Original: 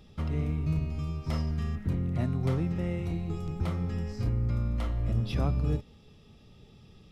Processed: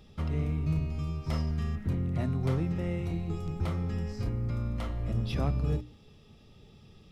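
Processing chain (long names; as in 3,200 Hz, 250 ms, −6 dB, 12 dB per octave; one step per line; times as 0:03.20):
mains-hum notches 60/120/180/240/300 Hz
hard clipping −20 dBFS, distortion −33 dB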